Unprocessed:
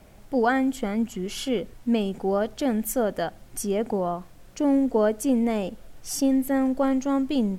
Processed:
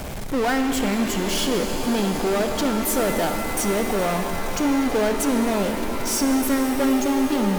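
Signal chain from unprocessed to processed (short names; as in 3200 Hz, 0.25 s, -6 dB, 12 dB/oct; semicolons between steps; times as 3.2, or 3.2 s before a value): power-law curve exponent 0.35; shimmer reverb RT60 4 s, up +7 st, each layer -2 dB, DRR 6 dB; gain -6 dB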